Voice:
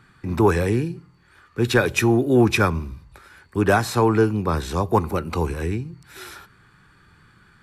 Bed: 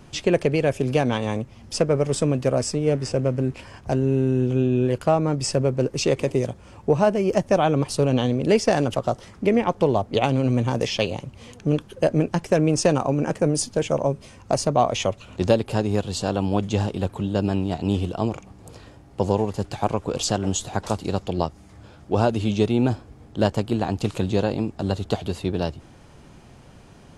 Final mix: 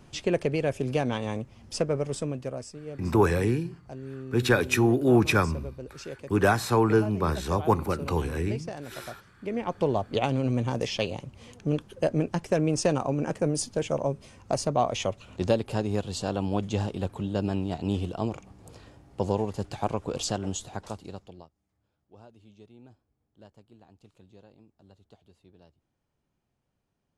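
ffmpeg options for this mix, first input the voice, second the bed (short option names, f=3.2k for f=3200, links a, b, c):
-filter_complex "[0:a]adelay=2750,volume=-4dB[a];[1:a]volume=7dB,afade=t=out:st=1.8:d=0.95:silence=0.237137,afade=t=in:st=9.38:d=0.49:silence=0.223872,afade=t=out:st=20.17:d=1.32:silence=0.0473151[b];[a][b]amix=inputs=2:normalize=0"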